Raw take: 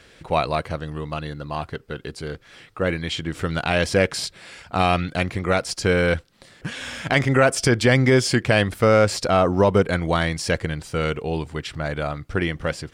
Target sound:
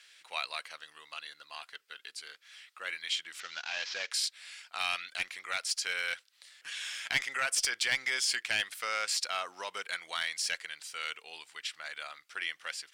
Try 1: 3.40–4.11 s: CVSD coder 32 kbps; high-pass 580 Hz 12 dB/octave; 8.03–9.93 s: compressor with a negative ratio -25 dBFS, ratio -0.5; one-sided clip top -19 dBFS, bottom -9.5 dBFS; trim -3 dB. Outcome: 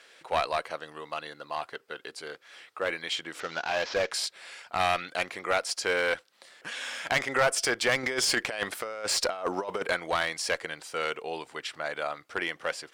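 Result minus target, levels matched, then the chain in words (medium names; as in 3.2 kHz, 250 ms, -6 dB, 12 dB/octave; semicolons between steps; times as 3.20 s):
500 Hz band +13.5 dB
3.40–4.11 s: CVSD coder 32 kbps; high-pass 2.2 kHz 12 dB/octave; 8.03–9.93 s: compressor with a negative ratio -25 dBFS, ratio -0.5; one-sided clip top -19 dBFS, bottom -9.5 dBFS; trim -3 dB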